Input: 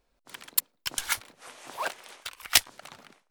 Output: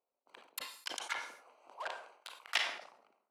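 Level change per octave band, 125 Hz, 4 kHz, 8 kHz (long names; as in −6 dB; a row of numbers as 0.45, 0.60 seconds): below −25 dB, −10.0 dB, −18.5 dB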